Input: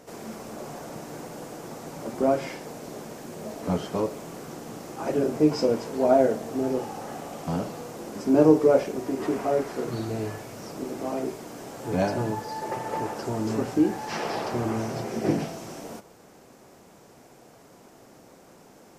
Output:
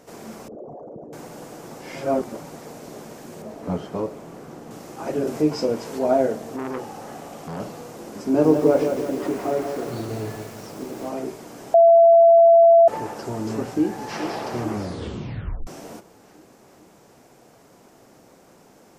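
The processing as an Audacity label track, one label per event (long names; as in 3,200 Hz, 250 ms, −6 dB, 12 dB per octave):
0.480000	1.130000	spectral envelope exaggerated exponent 3
1.800000	2.620000	reverse
3.420000	4.710000	high-shelf EQ 2,500 Hz −8.5 dB
5.270000	5.990000	one half of a high-frequency compander encoder only
6.560000	7.600000	saturating transformer saturates under 1,000 Hz
8.260000	11.090000	feedback echo at a low word length 171 ms, feedback 55%, word length 7 bits, level −6 dB
11.740000	12.880000	beep over 672 Hz −8.5 dBFS
13.550000	14.200000	delay throw 430 ms, feedback 60%, level −10.5 dB
14.700000	14.700000	tape stop 0.97 s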